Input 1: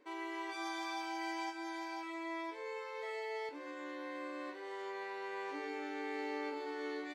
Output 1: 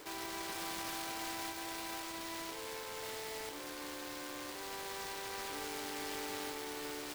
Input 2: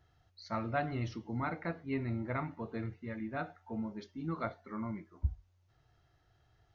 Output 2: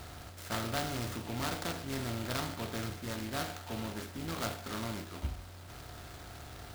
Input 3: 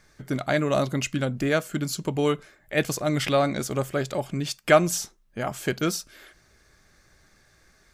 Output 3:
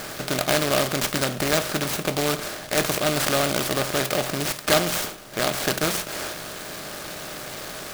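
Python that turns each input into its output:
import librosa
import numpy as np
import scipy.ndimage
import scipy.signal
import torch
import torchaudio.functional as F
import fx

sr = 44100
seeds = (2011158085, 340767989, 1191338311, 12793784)

y = fx.bin_compress(x, sr, power=0.4)
y = fx.high_shelf(y, sr, hz=10000.0, db=-10.5)
y = np.repeat(y[::4], 4)[:len(y)]
y = fx.high_shelf(y, sr, hz=2300.0, db=10.0)
y = fx.noise_mod_delay(y, sr, seeds[0], noise_hz=2500.0, depth_ms=0.096)
y = F.gain(torch.from_numpy(y), -6.0).numpy()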